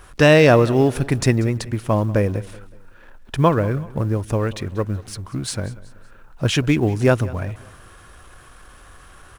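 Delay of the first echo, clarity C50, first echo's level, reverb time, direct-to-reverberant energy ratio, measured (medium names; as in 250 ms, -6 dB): 188 ms, no reverb, -19.5 dB, no reverb, no reverb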